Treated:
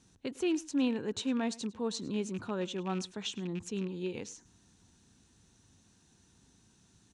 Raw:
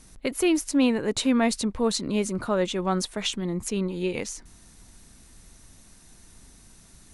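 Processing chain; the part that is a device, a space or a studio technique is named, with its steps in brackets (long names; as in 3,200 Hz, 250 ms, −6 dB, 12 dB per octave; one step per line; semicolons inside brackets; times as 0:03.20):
0:01.21–0:01.97: high-pass filter 170 Hz 6 dB per octave
car door speaker with a rattle (loose part that buzzes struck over −30 dBFS, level −26 dBFS; loudspeaker in its box 93–7,200 Hz, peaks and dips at 98 Hz +5 dB, 610 Hz −9 dB, 1,200 Hz −5 dB, 2,100 Hz −9 dB, 4,800 Hz −5 dB)
single-tap delay 103 ms −21 dB
level −8 dB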